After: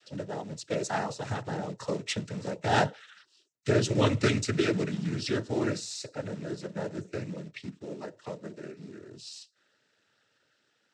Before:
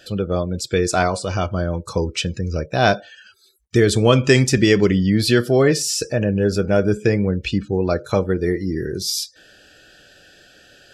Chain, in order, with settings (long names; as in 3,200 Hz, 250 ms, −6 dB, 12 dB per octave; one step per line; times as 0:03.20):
source passing by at 0:02.73, 19 m/s, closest 26 metres
floating-point word with a short mantissa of 2 bits
cochlear-implant simulation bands 12
level −7.5 dB